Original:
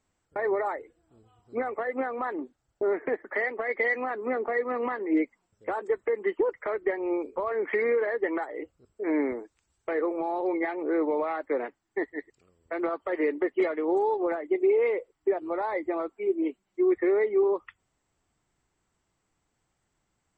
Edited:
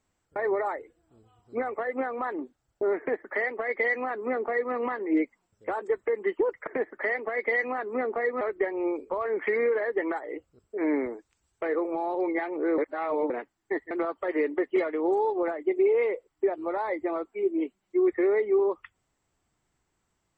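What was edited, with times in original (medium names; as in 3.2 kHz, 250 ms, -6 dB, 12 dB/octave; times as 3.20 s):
2.99–4.73 s: copy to 6.67 s
11.04–11.56 s: reverse
12.17–12.75 s: delete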